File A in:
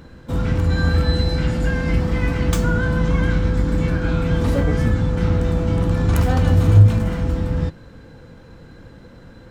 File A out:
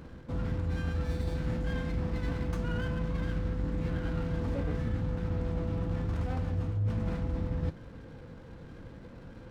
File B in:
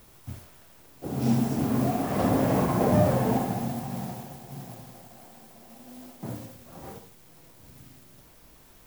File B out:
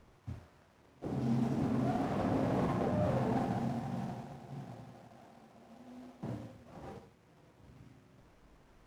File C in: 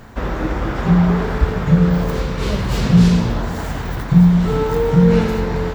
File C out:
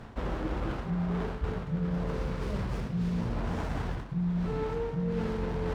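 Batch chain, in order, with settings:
reversed playback
downward compressor 12 to 1, threshold −23 dBFS
reversed playback
high-frequency loss of the air 85 metres
windowed peak hold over 9 samples
level −4.5 dB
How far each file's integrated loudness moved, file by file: −14.5, −9.0, −16.5 LU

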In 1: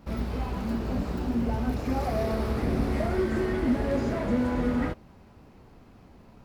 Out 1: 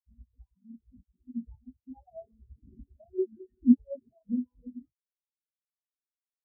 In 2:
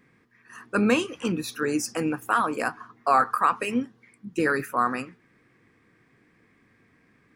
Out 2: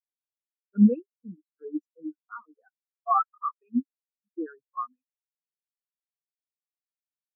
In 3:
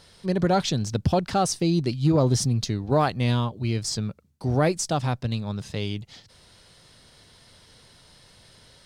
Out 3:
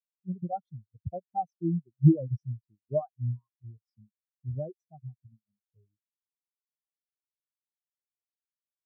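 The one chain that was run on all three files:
reverb reduction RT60 1.4 s
every bin expanded away from the loudest bin 4 to 1
normalise the peak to −9 dBFS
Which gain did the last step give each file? +7.0, −1.0, +3.0 decibels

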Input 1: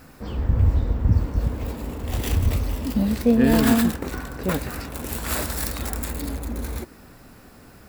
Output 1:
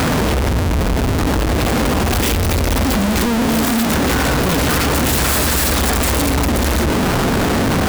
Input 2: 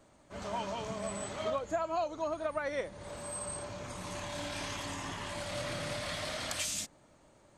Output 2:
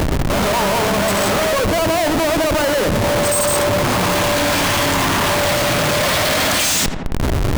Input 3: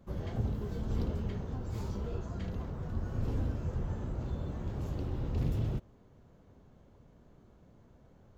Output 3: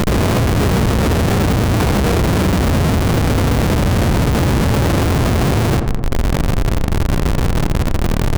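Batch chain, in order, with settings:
high-pass filter 74 Hz 6 dB per octave
in parallel at −2 dB: upward compression, threshold −28 dBFS
on the sum: fuzz pedal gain 35 dB, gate −43 dBFS
surface crackle 410 per second −30 dBFS
floating-point word with a short mantissa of 4 bits
comparator with hysteresis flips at −25 dBFS
on a send: feedback echo with a low-pass in the loop 84 ms, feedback 70%, low-pass 1,600 Hz, level −11 dB
on the sum: envelope flattener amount 50%
loudness normalisation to −16 LKFS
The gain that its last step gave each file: −2.0, −0.5, +2.5 decibels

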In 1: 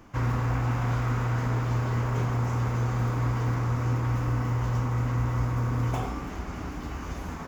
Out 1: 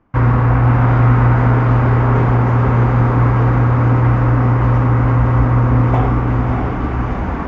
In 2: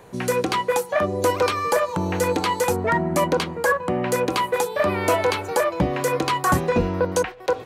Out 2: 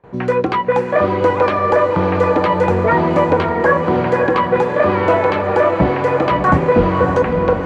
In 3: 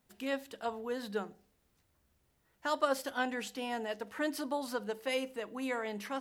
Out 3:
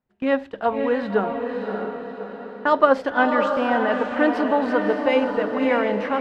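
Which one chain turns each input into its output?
low-pass filter 1,900 Hz 12 dB per octave
noise gate with hold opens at −39 dBFS
on a send: feedback delay with all-pass diffusion 601 ms, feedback 48%, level −4.5 dB
on the sum: normalise the peak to −1.5 dBFS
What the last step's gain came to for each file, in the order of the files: +14.0, +6.0, +15.0 decibels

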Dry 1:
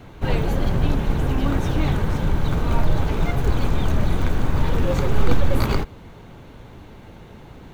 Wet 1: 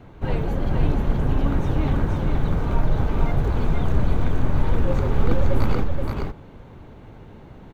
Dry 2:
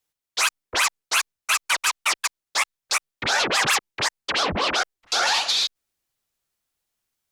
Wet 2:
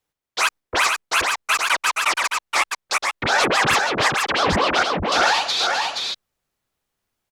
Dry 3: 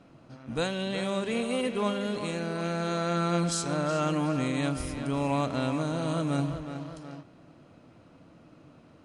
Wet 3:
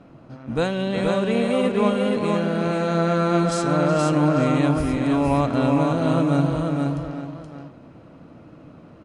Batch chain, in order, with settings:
high-shelf EQ 2,600 Hz −10.5 dB
on a send: single-tap delay 474 ms −3.5 dB
on the sum: normalise the peak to −6 dBFS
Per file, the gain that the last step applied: −2.5, +6.5, +8.0 decibels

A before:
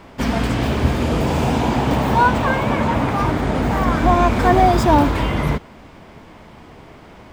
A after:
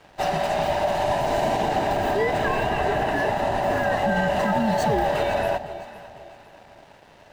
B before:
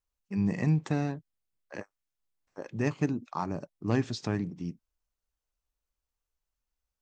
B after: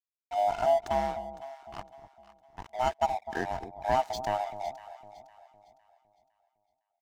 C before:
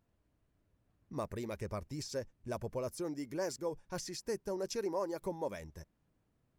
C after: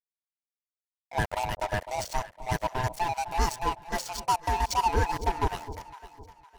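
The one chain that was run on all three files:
neighbouring bands swapped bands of 500 Hz
brickwall limiter −10.5 dBFS
dead-zone distortion −44 dBFS
delay that swaps between a low-pass and a high-pass 254 ms, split 850 Hz, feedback 59%, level −11 dB
normalise the peak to −12 dBFS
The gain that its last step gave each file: −3.5, +1.5, +14.5 decibels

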